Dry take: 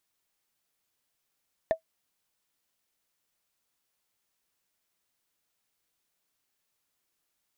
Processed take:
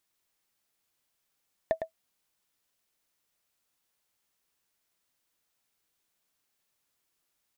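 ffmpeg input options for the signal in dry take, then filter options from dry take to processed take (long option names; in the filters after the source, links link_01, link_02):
-f lavfi -i "aevalsrc='0.158*pow(10,-3*t/0.1)*sin(2*PI*648*t)+0.0398*pow(10,-3*t/0.03)*sin(2*PI*1786.5*t)+0.01*pow(10,-3*t/0.013)*sin(2*PI*3501.8*t)+0.00251*pow(10,-3*t/0.007)*sin(2*PI*5788.6*t)+0.000631*pow(10,-3*t/0.004)*sin(2*PI*8644.3*t)':duration=0.45:sample_rate=44100"
-af "aecho=1:1:107:0.422"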